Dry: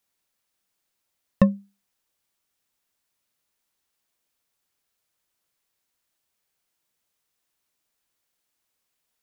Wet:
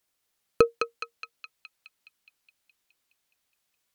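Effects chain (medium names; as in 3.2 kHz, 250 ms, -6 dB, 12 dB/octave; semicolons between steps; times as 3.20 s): band-passed feedback delay 489 ms, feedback 70%, band-pass 1.3 kHz, level -4 dB; speed mistake 33 rpm record played at 78 rpm; peak limiter -9.5 dBFS, peak gain reduction 4.5 dB; trim +4 dB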